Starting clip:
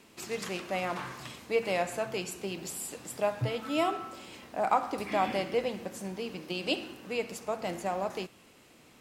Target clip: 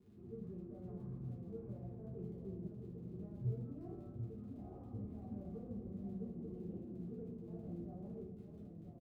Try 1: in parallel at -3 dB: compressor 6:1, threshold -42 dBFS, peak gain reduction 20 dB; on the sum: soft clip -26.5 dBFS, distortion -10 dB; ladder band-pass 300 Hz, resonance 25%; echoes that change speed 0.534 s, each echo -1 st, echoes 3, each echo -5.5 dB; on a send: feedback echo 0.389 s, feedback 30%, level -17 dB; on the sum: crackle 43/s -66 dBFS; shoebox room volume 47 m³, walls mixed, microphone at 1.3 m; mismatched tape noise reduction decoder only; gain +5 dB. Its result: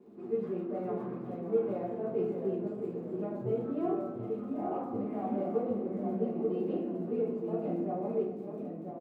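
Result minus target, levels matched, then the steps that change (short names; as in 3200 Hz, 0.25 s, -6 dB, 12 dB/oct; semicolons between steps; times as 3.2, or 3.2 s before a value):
125 Hz band -11.0 dB; soft clip: distortion -6 dB
change: soft clip -35 dBFS, distortion -4 dB; change: ladder band-pass 95 Hz, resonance 25%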